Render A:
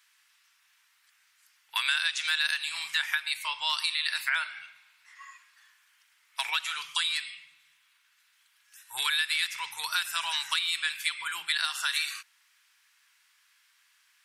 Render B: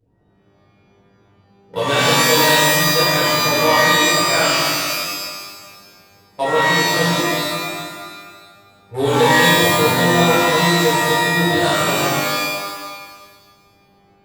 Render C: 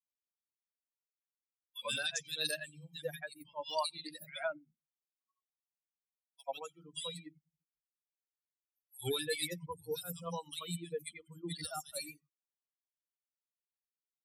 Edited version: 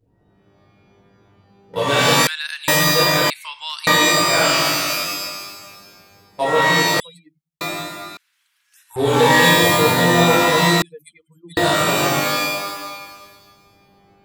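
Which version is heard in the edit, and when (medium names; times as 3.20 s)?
B
2.27–2.68 s: from A
3.30–3.87 s: from A
7.00–7.61 s: from C
8.17–8.96 s: from A
10.82–11.57 s: from C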